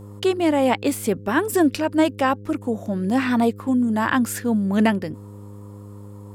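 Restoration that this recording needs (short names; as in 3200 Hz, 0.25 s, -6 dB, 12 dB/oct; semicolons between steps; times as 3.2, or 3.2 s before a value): de-hum 101.9 Hz, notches 5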